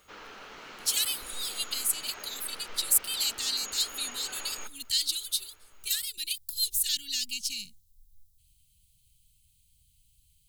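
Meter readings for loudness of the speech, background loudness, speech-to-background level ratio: -29.0 LUFS, -43.0 LUFS, 14.0 dB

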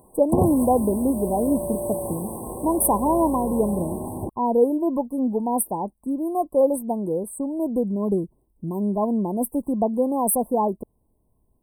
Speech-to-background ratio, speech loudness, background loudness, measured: 6.0 dB, -23.5 LUFS, -29.5 LUFS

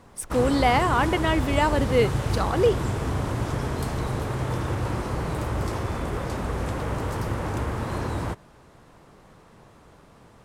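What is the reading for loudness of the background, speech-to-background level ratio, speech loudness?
-28.5 LUFS, 5.0 dB, -23.5 LUFS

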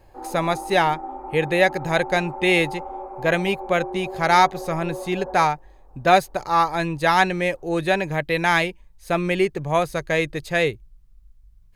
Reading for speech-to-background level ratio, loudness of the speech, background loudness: 13.0 dB, -21.5 LUFS, -34.5 LUFS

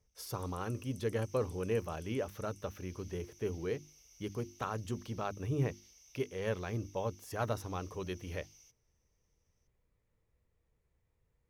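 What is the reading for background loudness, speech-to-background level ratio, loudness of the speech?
-58.5 LUFS, 20.0 dB, -38.5 LUFS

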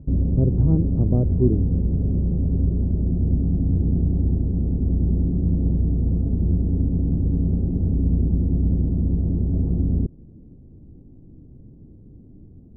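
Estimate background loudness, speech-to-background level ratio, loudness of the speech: -22.5 LUFS, -0.5 dB, -23.0 LUFS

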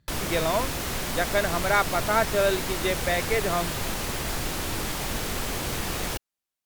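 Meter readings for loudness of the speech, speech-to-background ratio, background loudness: -26.5 LUFS, 3.0 dB, -29.5 LUFS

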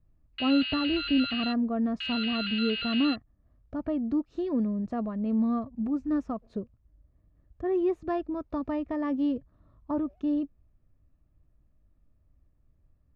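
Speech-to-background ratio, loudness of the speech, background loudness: 2.5 dB, -30.0 LUFS, -32.5 LUFS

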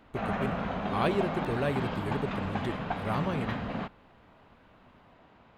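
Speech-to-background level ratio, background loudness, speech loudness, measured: 0.0 dB, -34.0 LUFS, -34.0 LUFS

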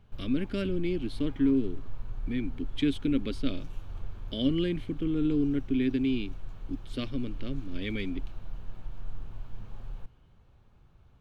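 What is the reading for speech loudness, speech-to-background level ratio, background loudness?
-31.0 LUFS, 15.0 dB, -46.0 LUFS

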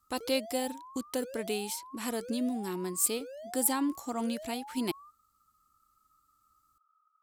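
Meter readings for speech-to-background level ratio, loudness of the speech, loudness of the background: 14.0 dB, -33.0 LUFS, -47.0 LUFS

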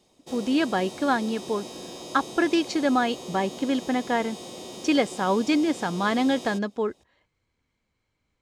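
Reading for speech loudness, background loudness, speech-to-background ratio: -25.5 LUFS, -39.0 LUFS, 13.5 dB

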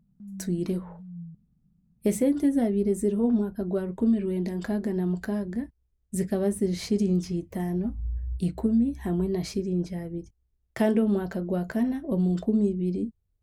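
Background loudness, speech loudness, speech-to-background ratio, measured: -42.5 LUFS, -27.5 LUFS, 15.0 dB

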